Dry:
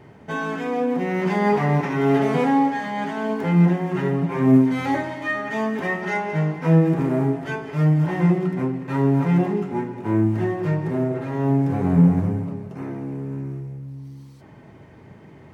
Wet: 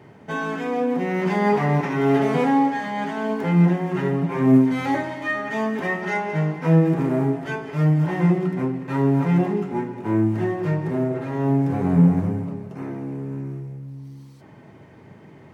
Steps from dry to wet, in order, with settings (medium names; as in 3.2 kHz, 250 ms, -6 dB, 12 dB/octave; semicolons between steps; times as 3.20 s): high-pass 94 Hz